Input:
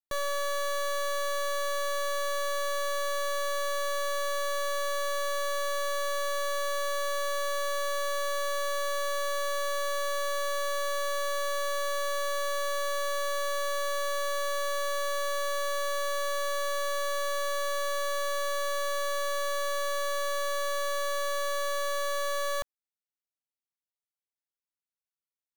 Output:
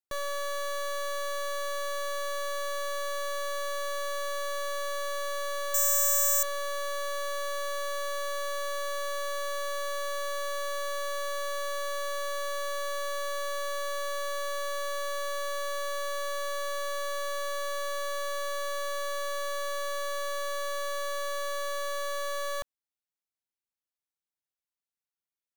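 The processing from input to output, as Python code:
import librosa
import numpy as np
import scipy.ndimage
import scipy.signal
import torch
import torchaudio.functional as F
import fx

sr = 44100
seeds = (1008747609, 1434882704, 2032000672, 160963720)

y = fx.resample_bad(x, sr, factor=6, down='filtered', up='zero_stuff', at=(5.74, 6.43))
y = F.gain(torch.from_numpy(y), -2.5).numpy()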